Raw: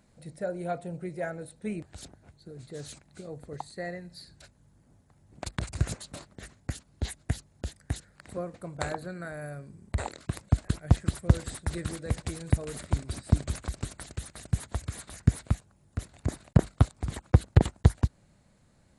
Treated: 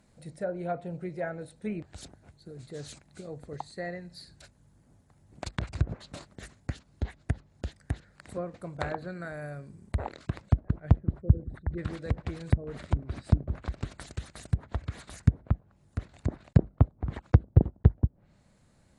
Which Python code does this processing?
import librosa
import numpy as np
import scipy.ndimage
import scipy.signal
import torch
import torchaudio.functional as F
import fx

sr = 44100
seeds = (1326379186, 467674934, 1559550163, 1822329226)

y = fx.envelope_sharpen(x, sr, power=2.0, at=(11.2, 11.77), fade=0.02)
y = fx.env_lowpass_down(y, sr, base_hz=480.0, full_db=-23.0)